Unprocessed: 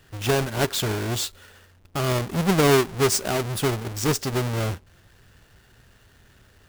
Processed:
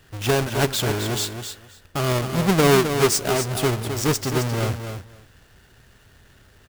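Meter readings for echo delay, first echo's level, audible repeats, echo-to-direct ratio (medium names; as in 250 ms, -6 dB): 263 ms, -8.0 dB, 2, -8.0 dB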